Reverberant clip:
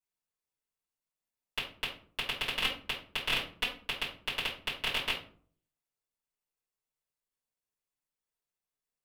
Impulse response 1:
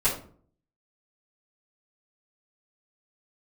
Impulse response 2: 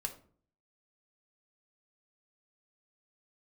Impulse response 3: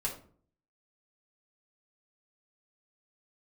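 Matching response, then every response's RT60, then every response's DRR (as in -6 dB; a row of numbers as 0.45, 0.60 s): 1; 0.50, 0.50, 0.50 s; -11.5, 3.5, -3.5 dB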